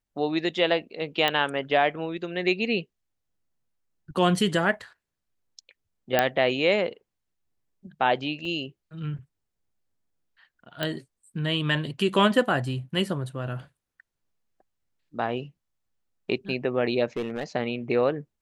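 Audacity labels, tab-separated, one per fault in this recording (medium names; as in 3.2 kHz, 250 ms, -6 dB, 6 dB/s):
1.280000	1.280000	pop -10 dBFS
6.190000	6.190000	pop -6 dBFS
8.450000	8.450000	dropout 2.5 ms
10.830000	10.830000	pop -14 dBFS
17.170000	17.440000	clipped -24.5 dBFS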